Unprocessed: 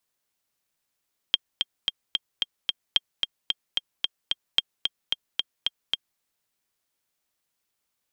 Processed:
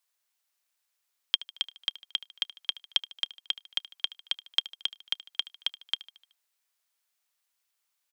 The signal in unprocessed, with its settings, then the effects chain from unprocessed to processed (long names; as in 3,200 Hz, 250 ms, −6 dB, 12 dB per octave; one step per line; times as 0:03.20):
click track 222 BPM, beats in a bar 6, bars 3, 3,210 Hz, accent 5 dB −5.5 dBFS
dynamic equaliser 1,800 Hz, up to −5 dB, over −43 dBFS, Q 0.87
Bessel high-pass filter 910 Hz, order 2
repeating echo 75 ms, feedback 54%, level −18 dB